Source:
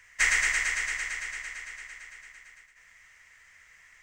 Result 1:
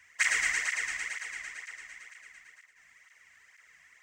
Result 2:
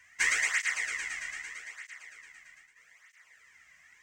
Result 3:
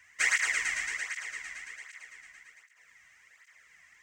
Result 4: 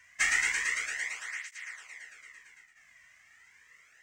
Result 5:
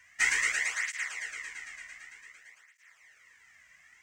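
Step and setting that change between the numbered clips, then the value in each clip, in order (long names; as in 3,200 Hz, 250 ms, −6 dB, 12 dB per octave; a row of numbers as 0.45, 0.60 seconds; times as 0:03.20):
through-zero flanger with one copy inverted, nulls at: 2.1, 0.8, 1.3, 0.33, 0.54 Hertz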